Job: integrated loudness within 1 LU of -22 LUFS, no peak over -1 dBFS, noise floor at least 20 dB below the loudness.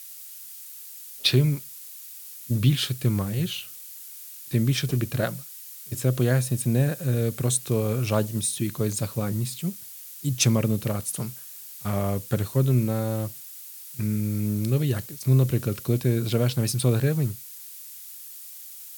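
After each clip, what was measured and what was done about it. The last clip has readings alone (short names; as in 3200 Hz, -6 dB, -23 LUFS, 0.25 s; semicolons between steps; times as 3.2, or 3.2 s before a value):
noise floor -42 dBFS; noise floor target -45 dBFS; loudness -25.0 LUFS; peak -6.5 dBFS; loudness target -22.0 LUFS
-> denoiser 6 dB, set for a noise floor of -42 dBFS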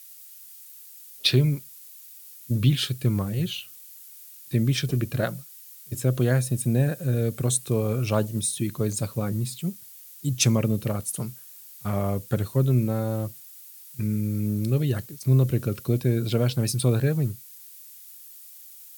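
noise floor -46 dBFS; loudness -25.5 LUFS; peak -6.5 dBFS; loudness target -22.0 LUFS
-> gain +3.5 dB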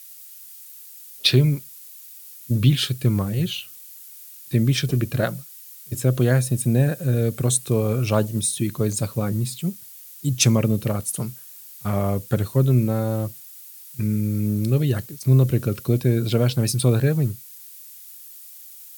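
loudness -22.0 LUFS; peak -3.0 dBFS; noise floor -43 dBFS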